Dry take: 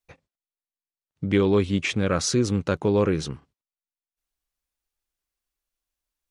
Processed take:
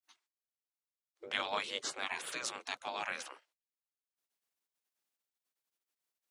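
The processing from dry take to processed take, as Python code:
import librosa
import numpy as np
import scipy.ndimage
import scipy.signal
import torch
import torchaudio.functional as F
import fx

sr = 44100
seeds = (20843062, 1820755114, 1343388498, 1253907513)

y = fx.spec_gate(x, sr, threshold_db=-20, keep='weak')
y = scipy.signal.sosfilt(scipy.signal.butter(2, 210.0, 'highpass', fs=sr, output='sos'), y)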